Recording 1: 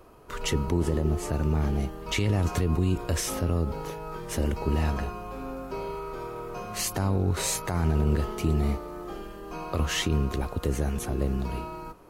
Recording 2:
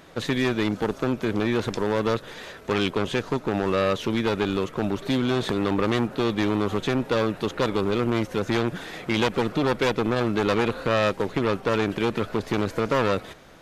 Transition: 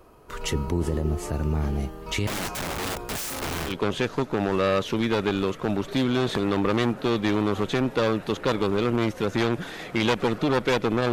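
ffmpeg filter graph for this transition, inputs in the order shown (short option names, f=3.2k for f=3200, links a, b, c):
-filter_complex "[0:a]asettb=1/sr,asplit=3[a][b][c];[a]atrim=end=2.274[d];[b]atrim=start=2.27:end=3.8,asetpts=PTS-STARTPTS,afade=t=in:d=0.004:c=qsin,afade=t=out:st=1.526:d=0.004:c=qsin,aeval=exprs='(mod(18.8*val(0)+1,2)-1)/18.8':c=same[e];[c]atrim=start=3.796[f];[d][e]acrossfade=d=0.004:c1=hsin:c2=qsin[g];[g][f]acrossfade=d=0.004:c1=qsin:c2=hsin,apad=whole_dur=11.12,atrim=end=11.12,atrim=end=3.8,asetpts=PTS-STARTPTS[h];[1:a]atrim=start=2.78:end=10.26,asetpts=PTS-STARTPTS[i];[h][i]acrossfade=d=0.16:c1=tri:c2=tri"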